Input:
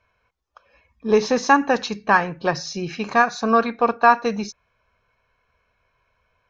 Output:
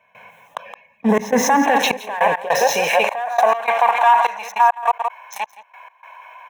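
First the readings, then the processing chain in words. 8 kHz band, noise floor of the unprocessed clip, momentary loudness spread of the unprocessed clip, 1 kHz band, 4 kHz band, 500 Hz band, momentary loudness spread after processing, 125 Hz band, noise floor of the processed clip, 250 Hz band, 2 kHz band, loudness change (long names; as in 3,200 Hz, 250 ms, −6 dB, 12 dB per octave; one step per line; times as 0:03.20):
can't be measured, −70 dBFS, 12 LU, +5.0 dB, +5.5 dB, +2.5 dB, 15 LU, −1.5 dB, −56 dBFS, +1.0 dB, +1.5 dB, +2.5 dB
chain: delay that plays each chunk backwards 546 ms, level −13 dB
leveller curve on the samples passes 3
low-shelf EQ 190 Hz −10.5 dB
phaser with its sweep stopped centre 1,300 Hz, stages 6
gain on a spectral selection 0:01.09–0:01.64, 2,200–4,600 Hz −7 dB
brickwall limiter −13.5 dBFS, peak gain reduction 12 dB
high-pass filter 92 Hz
parametric band 1,000 Hz +4.5 dB 1.4 octaves
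high-pass filter sweep 170 Hz → 910 Hz, 0:00.87–0:03.97
single-tap delay 169 ms −11.5 dB
gate pattern ".xxxx..x" 102 BPM −24 dB
envelope flattener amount 50%
level −1 dB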